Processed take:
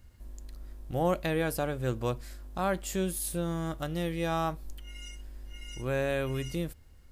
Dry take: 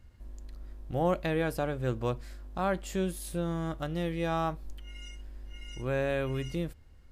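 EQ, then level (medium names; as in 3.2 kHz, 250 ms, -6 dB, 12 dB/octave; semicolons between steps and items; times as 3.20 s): treble shelf 6.4 kHz +11 dB; 0.0 dB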